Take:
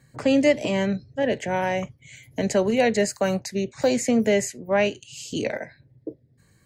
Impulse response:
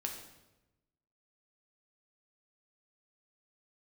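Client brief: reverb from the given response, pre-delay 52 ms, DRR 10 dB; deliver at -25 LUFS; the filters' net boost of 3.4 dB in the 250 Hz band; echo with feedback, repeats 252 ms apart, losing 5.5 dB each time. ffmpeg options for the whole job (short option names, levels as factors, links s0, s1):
-filter_complex "[0:a]equalizer=f=250:t=o:g=4,aecho=1:1:252|504|756|1008|1260|1512|1764:0.531|0.281|0.149|0.079|0.0419|0.0222|0.0118,asplit=2[s0][s1];[1:a]atrim=start_sample=2205,adelay=52[s2];[s1][s2]afir=irnorm=-1:irlink=0,volume=0.316[s3];[s0][s3]amix=inputs=2:normalize=0,volume=0.562"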